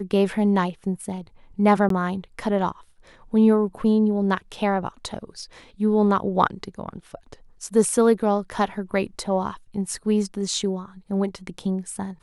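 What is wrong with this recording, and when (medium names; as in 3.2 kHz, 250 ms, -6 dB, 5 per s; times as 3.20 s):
1.89–1.90 s: dropout 13 ms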